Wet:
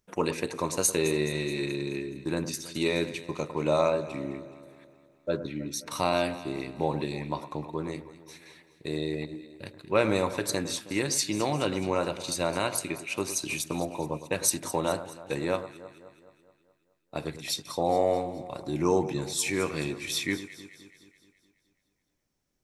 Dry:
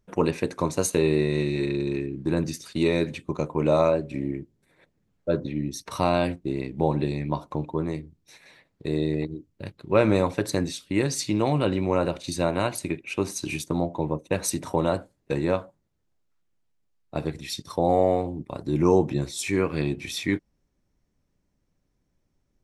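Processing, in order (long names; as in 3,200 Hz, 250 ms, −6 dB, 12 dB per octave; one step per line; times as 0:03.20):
spectral tilt +2 dB per octave
on a send: delay that swaps between a low-pass and a high-pass 106 ms, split 1,600 Hz, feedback 73%, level −12 dB
on the sum: level −2.5 dB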